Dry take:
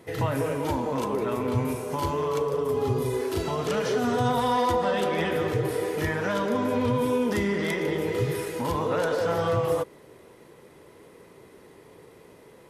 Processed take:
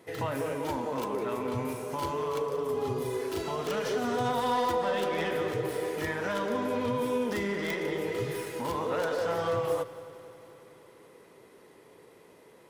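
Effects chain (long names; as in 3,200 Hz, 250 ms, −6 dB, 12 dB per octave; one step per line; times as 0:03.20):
stylus tracing distortion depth 0.1 ms
low-shelf EQ 140 Hz −11 dB
echo machine with several playback heads 91 ms, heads second and third, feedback 67%, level −19.5 dB
level −3.5 dB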